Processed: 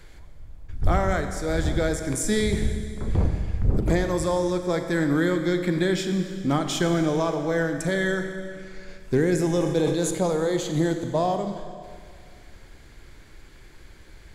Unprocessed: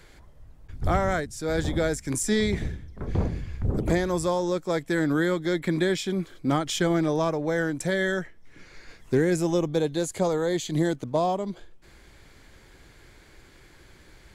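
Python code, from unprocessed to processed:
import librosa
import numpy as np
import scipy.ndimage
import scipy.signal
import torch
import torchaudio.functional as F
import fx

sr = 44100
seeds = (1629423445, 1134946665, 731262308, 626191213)

y = fx.low_shelf(x, sr, hz=65.0, db=9.0)
y = fx.rev_schroeder(y, sr, rt60_s=2.2, comb_ms=28, drr_db=6.5)
y = fx.sustainer(y, sr, db_per_s=41.0, at=(9.47, 10.15))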